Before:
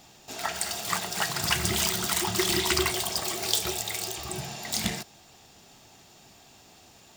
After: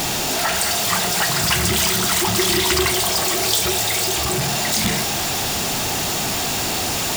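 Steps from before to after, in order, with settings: zero-crossing step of -18 dBFS; gain +1.5 dB

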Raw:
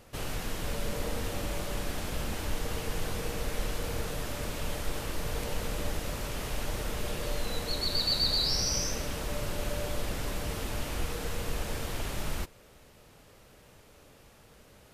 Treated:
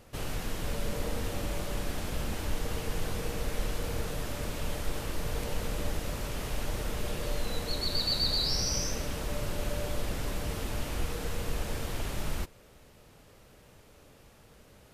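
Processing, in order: low shelf 440 Hz +2.5 dB; gain -1.5 dB

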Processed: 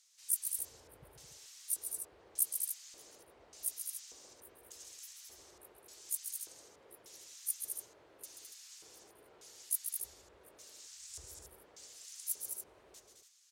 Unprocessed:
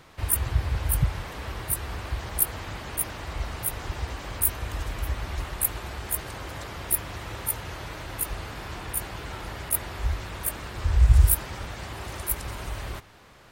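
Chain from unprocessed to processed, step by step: pre-emphasis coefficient 0.9; LFO band-pass square 0.85 Hz 440–6400 Hz; loudspeakers at several distances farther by 46 m -7 dB, 73 m -6 dB, 98 m -9 dB; gain +1 dB

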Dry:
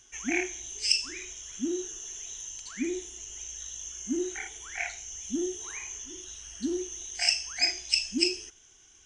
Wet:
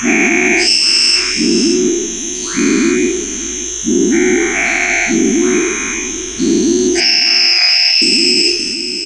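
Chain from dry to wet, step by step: spectral dilation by 0.48 s; 7–8.02 elliptic band-pass 770–5500 Hz, stop band 40 dB; echo 0.576 s -15 dB; on a send at -19 dB: reverb RT60 0.20 s, pre-delay 3 ms; on the sum: maximiser +14 dB; gain -1 dB

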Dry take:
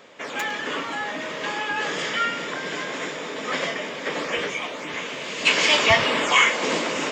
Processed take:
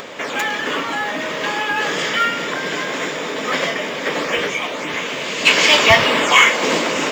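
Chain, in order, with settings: in parallel at +2 dB: upward compressor, threshold -24 dBFS; on the sum: short-mantissa float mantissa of 4-bit; gain -1 dB

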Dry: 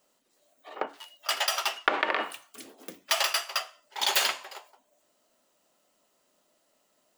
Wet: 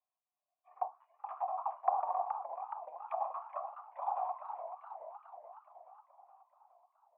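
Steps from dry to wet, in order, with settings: vocal tract filter a; auto-wah 800–2900 Hz, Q 3.4, down, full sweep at -38.5 dBFS; warbling echo 0.423 s, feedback 60%, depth 178 cents, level -8 dB; gain +8.5 dB

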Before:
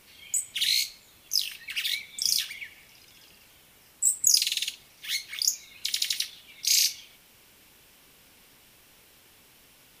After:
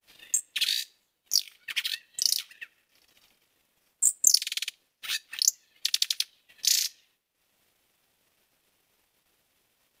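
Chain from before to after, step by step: ring modulator 400 Hz; expander -52 dBFS; transient shaper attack +9 dB, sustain -10 dB; gain -3 dB

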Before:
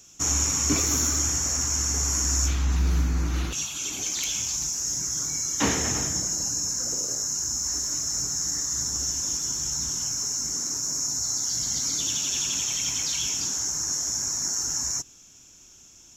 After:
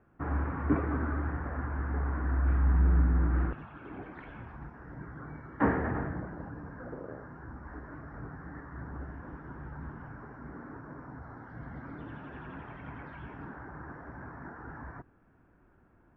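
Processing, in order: elliptic low-pass 1700 Hz, stop band 80 dB

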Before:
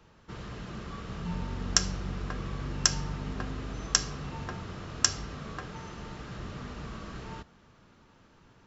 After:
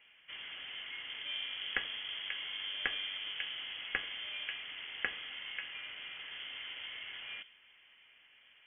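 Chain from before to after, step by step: three-band isolator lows -13 dB, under 290 Hz, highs -17 dB, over 2400 Hz; on a send at -15 dB: reverb RT60 0.30 s, pre-delay 3 ms; on the sum: inverted band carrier 3300 Hz

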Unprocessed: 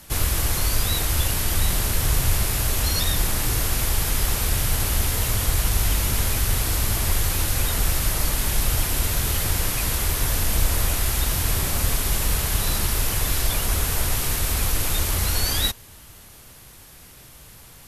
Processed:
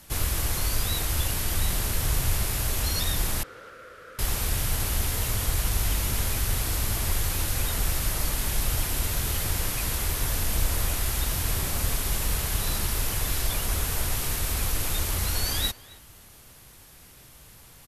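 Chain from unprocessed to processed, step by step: 3.43–4.19 double band-pass 840 Hz, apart 1.4 oct; speakerphone echo 0.27 s, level -19 dB; gain -4.5 dB

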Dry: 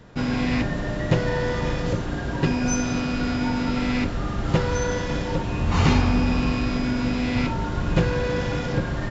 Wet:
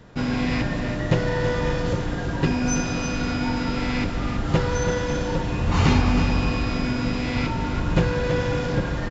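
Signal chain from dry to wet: echo 0.329 s -8.5 dB

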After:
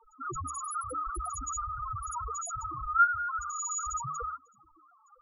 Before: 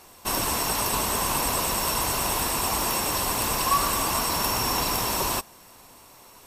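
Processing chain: loudest bins only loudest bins 1; notches 60/120/180/240 Hz; varispeed +24%; gain +7 dB

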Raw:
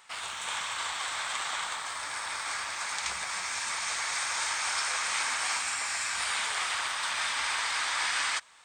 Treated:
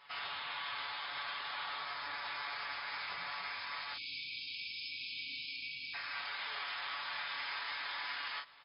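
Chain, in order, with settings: spectral delete 3.93–5.94, 310–2200 Hz; comb 7 ms, depth 76%; limiter -27.5 dBFS, peak gain reduction 11.5 dB; brick-wall FIR low-pass 5200 Hz; on a send: early reflections 21 ms -6 dB, 43 ms -6 dB; on the sum: gain -5.5 dB

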